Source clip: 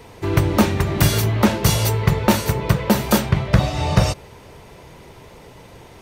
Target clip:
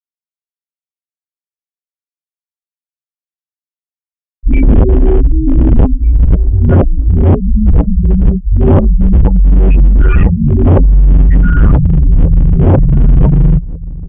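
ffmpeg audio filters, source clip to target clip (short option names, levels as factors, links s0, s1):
-filter_complex "[0:a]areverse,afftfilt=real='re*gte(hypot(re,im),0.251)':imag='im*gte(hypot(re,im),0.251)':win_size=1024:overlap=0.75,lowshelf=f=200:g=3.5,aresample=16000,asoftclip=type=hard:threshold=0.141,aresample=44100,acrossover=split=2600[s0][s1];[s1]acompressor=threshold=0.00398:ratio=4:attack=1:release=60[s2];[s0][s2]amix=inputs=2:normalize=0,asplit=2[s3][s4];[s4]adelay=641.4,volume=0.1,highshelf=f=4000:g=-14.4[s5];[s3][s5]amix=inputs=2:normalize=0,asetrate=18846,aresample=44100,tiltshelf=f=1200:g=-3,acompressor=threshold=0.0562:ratio=5,alimiter=level_in=15.8:limit=0.891:release=50:level=0:latency=1,volume=0.891"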